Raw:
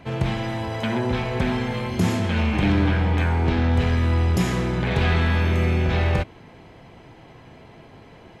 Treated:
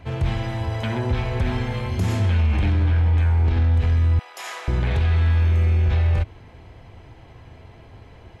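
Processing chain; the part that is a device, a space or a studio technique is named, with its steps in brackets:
car stereo with a boomy subwoofer (low shelf with overshoot 120 Hz +9.5 dB, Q 1.5; brickwall limiter −11 dBFS, peak gain reduction 9 dB)
0:04.19–0:04.68: high-pass filter 650 Hz 24 dB per octave
level −2 dB

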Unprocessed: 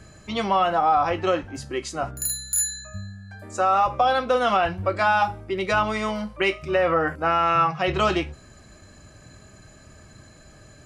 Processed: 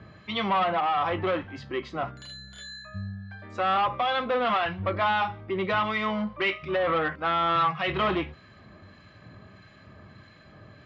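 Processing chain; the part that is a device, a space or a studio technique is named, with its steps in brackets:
guitar amplifier with harmonic tremolo (two-band tremolo in antiphase 1.6 Hz, depth 50%, crossover 1,400 Hz; soft clipping −22 dBFS, distortion −11 dB; loudspeaker in its box 86–3,900 Hz, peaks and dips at 100 Hz +4 dB, 190 Hz +4 dB, 1,100 Hz +6 dB, 2,000 Hz +5 dB, 3,400 Hz +5 dB)

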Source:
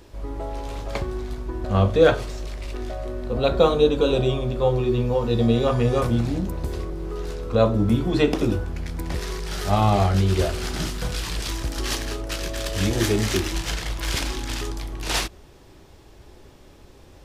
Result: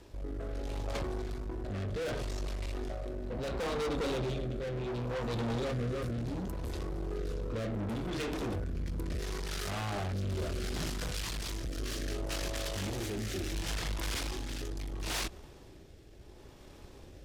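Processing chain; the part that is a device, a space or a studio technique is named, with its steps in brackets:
overdriven rotary cabinet (tube saturation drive 31 dB, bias 0.55; rotating-speaker cabinet horn 0.7 Hz)

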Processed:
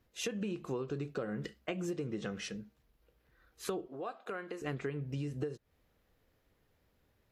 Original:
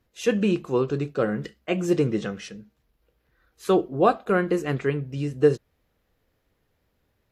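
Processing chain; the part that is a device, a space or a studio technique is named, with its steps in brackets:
serial compression, peaks first (downward compressor 6 to 1, threshold −27 dBFS, peak gain reduction 14 dB; downward compressor 3 to 1, threshold −33 dBFS, peak gain reduction 7.5 dB)
0:03.87–0:04.62: meter weighting curve A
level −2 dB

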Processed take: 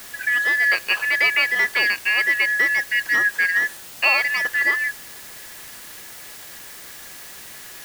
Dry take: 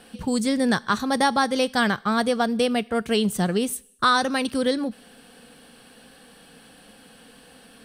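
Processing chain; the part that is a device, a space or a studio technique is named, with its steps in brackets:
split-band scrambled radio (band-splitting scrambler in four parts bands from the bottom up 3142; band-pass filter 380–3,000 Hz; white noise bed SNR 17 dB)
level +3.5 dB

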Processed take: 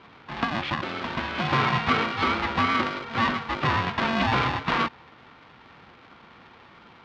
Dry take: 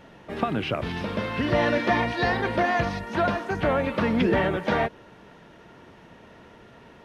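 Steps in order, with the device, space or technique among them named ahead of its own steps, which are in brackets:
ring modulator pedal into a guitar cabinet (ring modulator with a square carrier 450 Hz; loudspeaker in its box 79–4,200 Hz, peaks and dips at 280 Hz −3 dB, 620 Hz −9 dB, 1,200 Hz +3 dB)

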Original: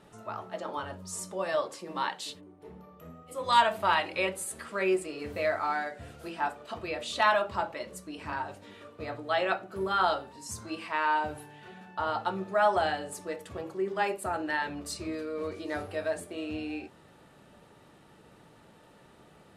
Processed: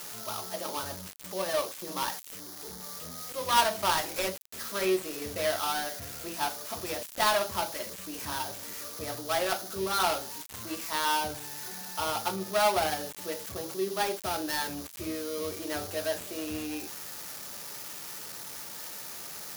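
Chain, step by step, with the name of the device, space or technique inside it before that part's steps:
budget class-D amplifier (gap after every zero crossing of 0.18 ms; spike at every zero crossing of −23.5 dBFS)

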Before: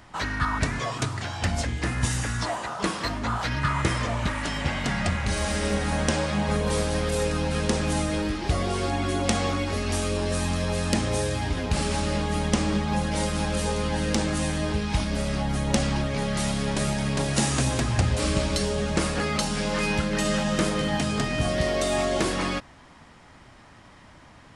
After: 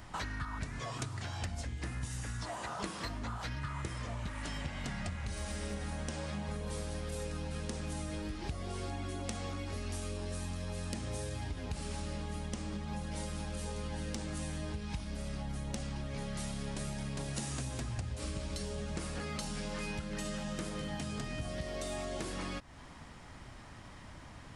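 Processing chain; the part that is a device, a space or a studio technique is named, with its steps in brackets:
ASMR close-microphone chain (low-shelf EQ 130 Hz +7.5 dB; downward compressor, threshold −34 dBFS, peak gain reduction 20 dB; high-shelf EQ 6,400 Hz +5.5 dB)
level −3 dB

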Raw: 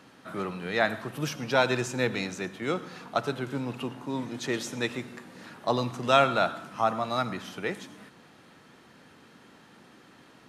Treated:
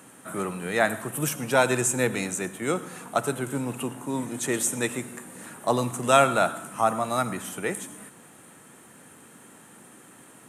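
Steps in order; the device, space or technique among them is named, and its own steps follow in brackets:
budget condenser microphone (high-pass filter 79 Hz; high shelf with overshoot 6,500 Hz +11.5 dB, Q 3)
level +3 dB

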